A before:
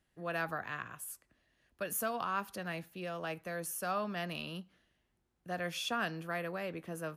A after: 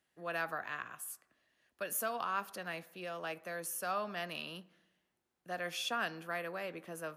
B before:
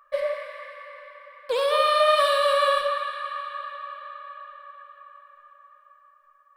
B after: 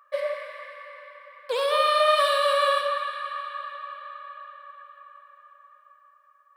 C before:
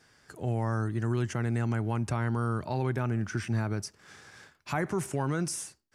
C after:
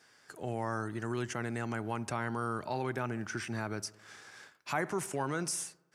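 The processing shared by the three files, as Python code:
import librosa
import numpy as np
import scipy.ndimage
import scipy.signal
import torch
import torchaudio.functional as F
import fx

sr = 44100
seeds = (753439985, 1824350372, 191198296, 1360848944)

p1 = fx.highpass(x, sr, hz=400.0, slope=6)
y = p1 + fx.echo_wet_lowpass(p1, sr, ms=65, feedback_pct=65, hz=1600.0, wet_db=-20.5, dry=0)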